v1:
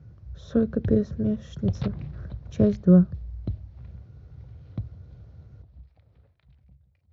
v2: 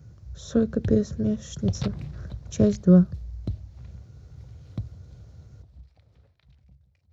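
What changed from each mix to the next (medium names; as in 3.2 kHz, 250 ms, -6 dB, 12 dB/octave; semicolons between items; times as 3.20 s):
master: remove distance through air 230 m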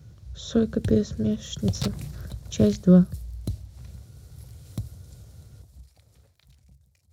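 speech: add peaking EQ 3.4 kHz +9 dB 0.89 oct; background: remove distance through air 230 m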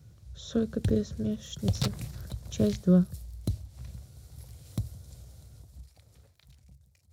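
speech -6.0 dB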